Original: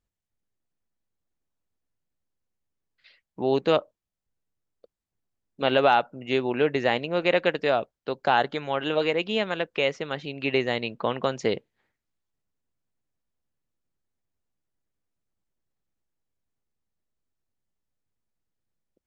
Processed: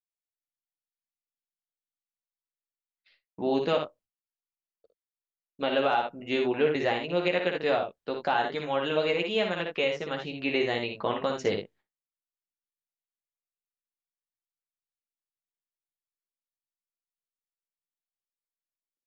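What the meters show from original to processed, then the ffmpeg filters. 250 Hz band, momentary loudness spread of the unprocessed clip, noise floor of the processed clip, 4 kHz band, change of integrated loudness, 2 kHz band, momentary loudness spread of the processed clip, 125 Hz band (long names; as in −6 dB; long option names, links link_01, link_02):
−2.0 dB, 7 LU, below −85 dBFS, −2.5 dB, −3.0 dB, −3.0 dB, 7 LU, −4.0 dB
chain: -af "aecho=1:1:11|59|79:0.596|0.562|0.355,alimiter=limit=-10dB:level=0:latency=1:release=237,agate=range=-33dB:threshold=-47dB:ratio=3:detection=peak,volume=-4dB"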